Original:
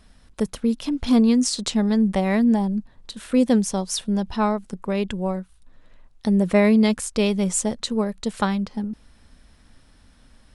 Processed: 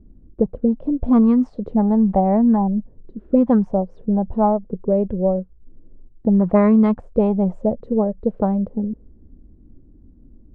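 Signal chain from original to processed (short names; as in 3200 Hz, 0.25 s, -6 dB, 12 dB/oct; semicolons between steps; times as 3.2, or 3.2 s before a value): low shelf 260 Hz +9.5 dB; envelope low-pass 330–1200 Hz up, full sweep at -8.5 dBFS; gain -3 dB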